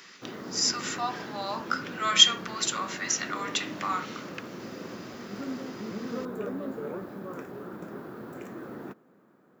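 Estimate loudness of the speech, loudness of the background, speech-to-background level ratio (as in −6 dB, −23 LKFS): −26.5 LKFS, −39.5 LKFS, 13.0 dB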